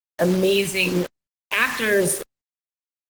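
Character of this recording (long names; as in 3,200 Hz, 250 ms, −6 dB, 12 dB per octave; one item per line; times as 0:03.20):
phaser sweep stages 2, 1 Hz, lowest notch 530–3,900 Hz
a quantiser's noise floor 6 bits, dither none
Opus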